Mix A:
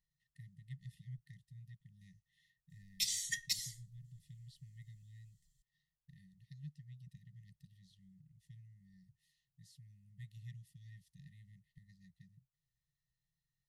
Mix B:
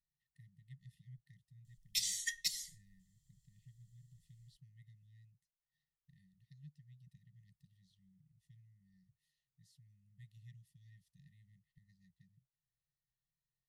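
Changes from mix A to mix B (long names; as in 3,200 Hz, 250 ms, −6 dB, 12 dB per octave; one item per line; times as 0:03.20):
speech −6.5 dB
background: entry −1.05 s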